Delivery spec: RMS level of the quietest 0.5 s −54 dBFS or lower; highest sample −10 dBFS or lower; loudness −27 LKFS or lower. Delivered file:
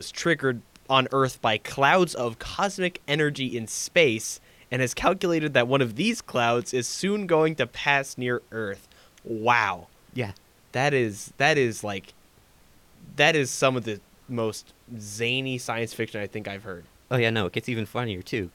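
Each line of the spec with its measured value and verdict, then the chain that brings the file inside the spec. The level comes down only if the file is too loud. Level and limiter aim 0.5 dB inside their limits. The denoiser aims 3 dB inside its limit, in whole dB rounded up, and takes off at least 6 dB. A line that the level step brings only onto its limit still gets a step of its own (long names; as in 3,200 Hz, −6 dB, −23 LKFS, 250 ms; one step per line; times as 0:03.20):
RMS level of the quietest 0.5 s −57 dBFS: in spec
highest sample −6.0 dBFS: out of spec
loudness −25.0 LKFS: out of spec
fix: level −2.5 dB
brickwall limiter −10.5 dBFS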